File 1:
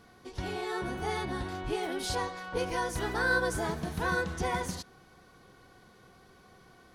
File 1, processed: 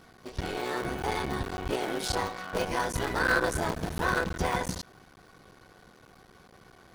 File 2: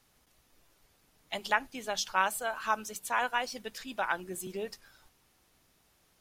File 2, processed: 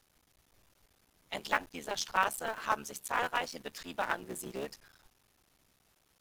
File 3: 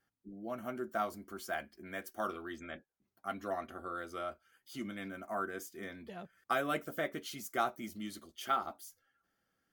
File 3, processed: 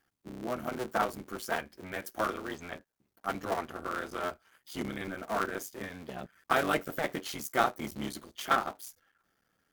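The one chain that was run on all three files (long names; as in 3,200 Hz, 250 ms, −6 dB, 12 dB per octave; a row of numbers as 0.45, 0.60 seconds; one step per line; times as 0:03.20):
sub-harmonics by changed cycles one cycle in 3, muted
normalise the peak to −12 dBFS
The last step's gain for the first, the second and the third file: +4.0, −0.5, +7.0 decibels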